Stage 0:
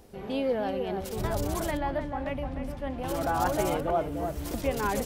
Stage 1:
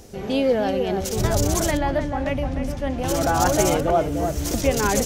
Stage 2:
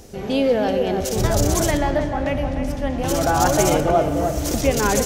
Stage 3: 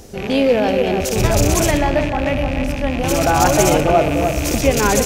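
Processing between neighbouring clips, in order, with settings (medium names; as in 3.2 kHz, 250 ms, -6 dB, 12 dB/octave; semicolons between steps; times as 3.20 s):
fifteen-band graphic EQ 100 Hz +3 dB, 1 kHz -4 dB, 6.3 kHz +10 dB; trim +8.5 dB
reverberation RT60 3.0 s, pre-delay 5 ms, DRR 9.5 dB; trim +1.5 dB
rattle on loud lows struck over -31 dBFS, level -20 dBFS; trim +3.5 dB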